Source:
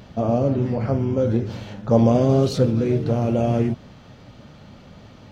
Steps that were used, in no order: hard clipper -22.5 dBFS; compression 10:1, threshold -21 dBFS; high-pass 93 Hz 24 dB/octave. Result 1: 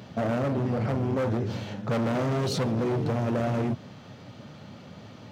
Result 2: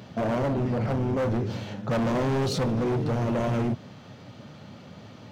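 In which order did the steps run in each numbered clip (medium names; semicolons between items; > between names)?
hard clipper > high-pass > compression; high-pass > hard clipper > compression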